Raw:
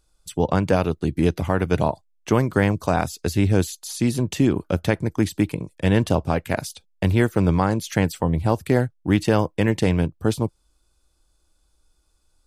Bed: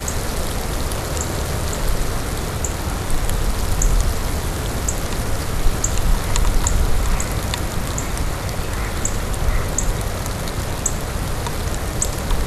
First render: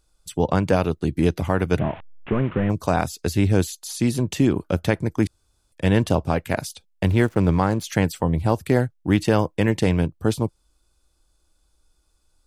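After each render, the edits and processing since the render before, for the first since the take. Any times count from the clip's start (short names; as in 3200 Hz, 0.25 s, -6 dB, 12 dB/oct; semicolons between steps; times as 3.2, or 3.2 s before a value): 1.79–2.7 delta modulation 16 kbps, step -33.5 dBFS; 5.27–5.72 room tone; 7.07–7.84 backlash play -37 dBFS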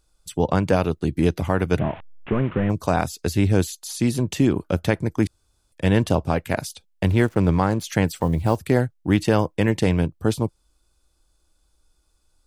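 8.07–8.58 block floating point 7-bit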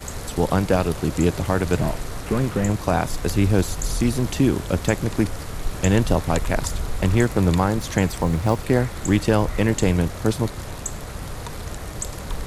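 add bed -9 dB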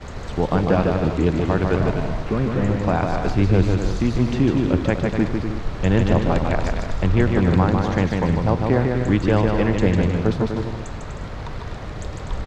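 air absorption 180 m; bouncing-ball echo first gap 0.15 s, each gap 0.65×, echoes 5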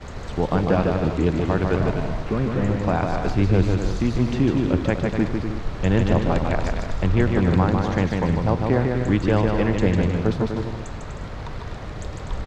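gain -1.5 dB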